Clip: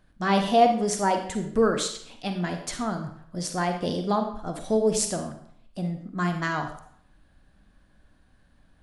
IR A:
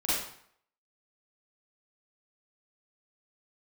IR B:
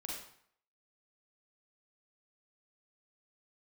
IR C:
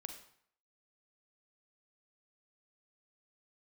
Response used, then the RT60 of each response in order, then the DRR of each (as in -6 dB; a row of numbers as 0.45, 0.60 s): C; 0.65, 0.65, 0.65 s; -10.5, -3.5, 5.5 dB